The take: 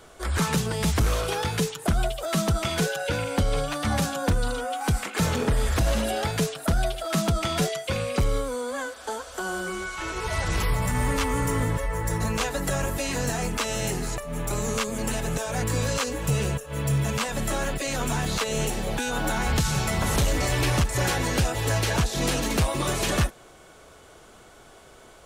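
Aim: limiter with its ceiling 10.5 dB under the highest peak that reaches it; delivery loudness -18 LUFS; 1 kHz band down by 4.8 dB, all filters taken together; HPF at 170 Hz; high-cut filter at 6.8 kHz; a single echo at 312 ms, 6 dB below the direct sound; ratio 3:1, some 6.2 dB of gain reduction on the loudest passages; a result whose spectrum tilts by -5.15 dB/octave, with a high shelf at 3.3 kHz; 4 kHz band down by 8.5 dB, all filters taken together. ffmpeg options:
-af "highpass=170,lowpass=6800,equalizer=f=1000:t=o:g=-5.5,highshelf=f=3300:g=-6,equalizer=f=4000:t=o:g=-6,acompressor=threshold=0.0282:ratio=3,alimiter=level_in=2.11:limit=0.0631:level=0:latency=1,volume=0.473,aecho=1:1:312:0.501,volume=10"

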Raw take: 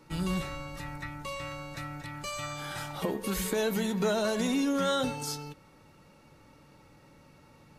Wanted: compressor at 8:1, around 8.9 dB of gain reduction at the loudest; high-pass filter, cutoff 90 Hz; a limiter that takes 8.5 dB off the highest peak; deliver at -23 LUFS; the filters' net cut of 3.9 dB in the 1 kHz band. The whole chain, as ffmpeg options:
-af "highpass=90,equalizer=f=1000:t=o:g=-5.5,acompressor=threshold=0.0178:ratio=8,volume=8.41,alimiter=limit=0.188:level=0:latency=1"

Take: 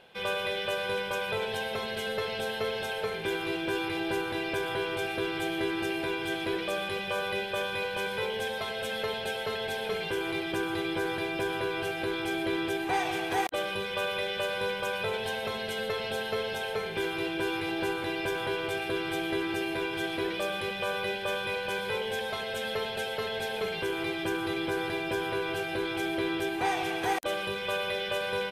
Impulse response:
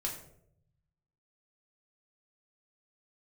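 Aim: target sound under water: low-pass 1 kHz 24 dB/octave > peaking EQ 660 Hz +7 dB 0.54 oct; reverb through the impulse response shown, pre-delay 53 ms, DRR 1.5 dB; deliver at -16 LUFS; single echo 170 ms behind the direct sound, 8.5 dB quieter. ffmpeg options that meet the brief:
-filter_complex "[0:a]aecho=1:1:170:0.376,asplit=2[s0][s1];[1:a]atrim=start_sample=2205,adelay=53[s2];[s1][s2]afir=irnorm=-1:irlink=0,volume=0.668[s3];[s0][s3]amix=inputs=2:normalize=0,lowpass=f=1000:w=0.5412,lowpass=f=1000:w=1.3066,equalizer=f=660:t=o:w=0.54:g=7,volume=4.22"

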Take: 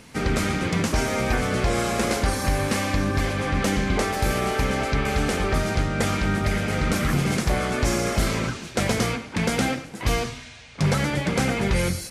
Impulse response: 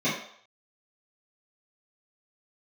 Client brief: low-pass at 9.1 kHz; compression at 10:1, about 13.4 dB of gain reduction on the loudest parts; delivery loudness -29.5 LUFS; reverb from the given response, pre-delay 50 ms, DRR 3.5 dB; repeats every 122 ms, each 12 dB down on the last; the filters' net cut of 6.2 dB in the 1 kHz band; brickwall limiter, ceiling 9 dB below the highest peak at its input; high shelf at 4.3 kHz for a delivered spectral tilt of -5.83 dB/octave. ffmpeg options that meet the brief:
-filter_complex "[0:a]lowpass=9100,equalizer=f=1000:t=o:g=-8.5,highshelf=f=4300:g=-7.5,acompressor=threshold=0.0251:ratio=10,alimiter=level_in=1.68:limit=0.0631:level=0:latency=1,volume=0.596,aecho=1:1:122|244|366:0.251|0.0628|0.0157,asplit=2[s0][s1];[1:a]atrim=start_sample=2205,adelay=50[s2];[s1][s2]afir=irnorm=-1:irlink=0,volume=0.15[s3];[s0][s3]amix=inputs=2:normalize=0,volume=1.88"

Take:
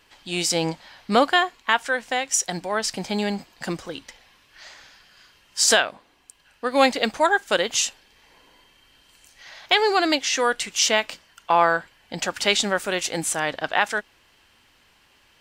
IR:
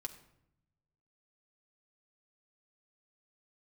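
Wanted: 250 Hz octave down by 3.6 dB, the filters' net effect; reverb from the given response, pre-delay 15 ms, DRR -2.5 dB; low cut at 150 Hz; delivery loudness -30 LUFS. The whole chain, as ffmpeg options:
-filter_complex "[0:a]highpass=150,equalizer=f=250:t=o:g=-4,asplit=2[s0][s1];[1:a]atrim=start_sample=2205,adelay=15[s2];[s1][s2]afir=irnorm=-1:irlink=0,volume=1.78[s3];[s0][s3]amix=inputs=2:normalize=0,volume=0.251"

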